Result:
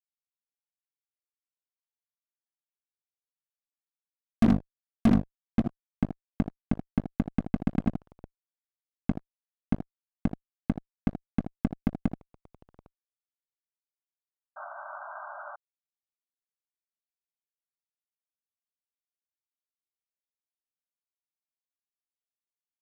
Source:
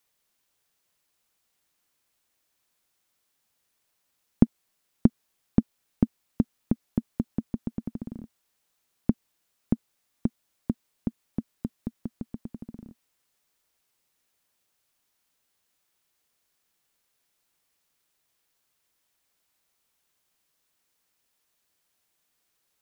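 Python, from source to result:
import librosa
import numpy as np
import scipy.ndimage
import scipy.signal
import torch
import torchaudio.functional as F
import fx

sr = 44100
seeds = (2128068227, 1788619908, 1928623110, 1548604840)

p1 = fx.wiener(x, sr, points=25)
p2 = fx.level_steps(p1, sr, step_db=16)
p3 = fx.hum_notches(p2, sr, base_hz=50, count=5)
p4 = p3 + fx.room_early_taps(p3, sr, ms=(40, 79), db=(-11.0, -9.5), dry=0)
p5 = fx.fuzz(p4, sr, gain_db=32.0, gate_db=-39.0)
p6 = fx.spec_paint(p5, sr, seeds[0], shape='noise', start_s=14.56, length_s=1.0, low_hz=570.0, high_hz=1600.0, level_db=-35.0)
p7 = fx.low_shelf(p6, sr, hz=250.0, db=9.0)
y = p7 * librosa.db_to_amplitude(-7.0)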